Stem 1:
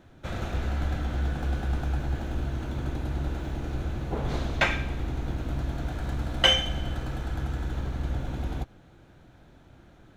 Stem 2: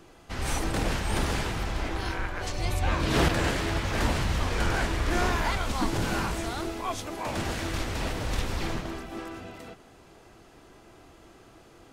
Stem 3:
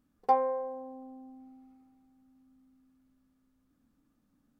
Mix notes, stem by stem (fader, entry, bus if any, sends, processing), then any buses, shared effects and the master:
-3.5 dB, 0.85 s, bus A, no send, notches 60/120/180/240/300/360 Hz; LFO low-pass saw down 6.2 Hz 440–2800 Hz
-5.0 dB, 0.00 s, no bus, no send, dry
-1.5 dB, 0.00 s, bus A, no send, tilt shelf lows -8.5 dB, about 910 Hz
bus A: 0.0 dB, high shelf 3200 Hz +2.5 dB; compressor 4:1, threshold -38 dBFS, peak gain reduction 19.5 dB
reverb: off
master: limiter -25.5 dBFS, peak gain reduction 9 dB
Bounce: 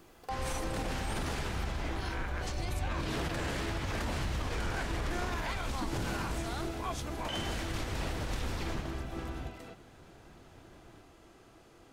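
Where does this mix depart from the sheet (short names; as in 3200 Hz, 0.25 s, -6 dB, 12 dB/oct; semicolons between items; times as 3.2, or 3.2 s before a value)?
stem 1: missing LFO low-pass saw down 6.2 Hz 440–2800 Hz; stem 3 -1.5 dB -> +7.5 dB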